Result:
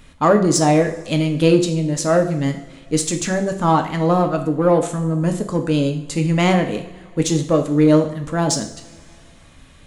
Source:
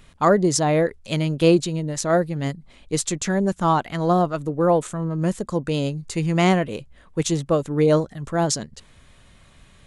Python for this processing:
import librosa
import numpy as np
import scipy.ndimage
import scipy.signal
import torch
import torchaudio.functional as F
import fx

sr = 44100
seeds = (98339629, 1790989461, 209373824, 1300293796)

p1 = fx.peak_eq(x, sr, hz=260.0, db=4.5, octaves=0.41)
p2 = 10.0 ** (-20.5 / 20.0) * np.tanh(p1 / 10.0 ** (-20.5 / 20.0))
p3 = p1 + (p2 * 10.0 ** (-8.0 / 20.0))
y = fx.rev_double_slope(p3, sr, seeds[0], early_s=0.55, late_s=2.3, knee_db=-18, drr_db=4.5)